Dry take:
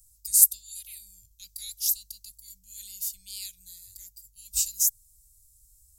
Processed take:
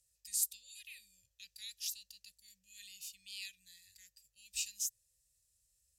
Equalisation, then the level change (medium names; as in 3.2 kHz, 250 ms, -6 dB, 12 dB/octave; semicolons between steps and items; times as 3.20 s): vowel filter e; +15.0 dB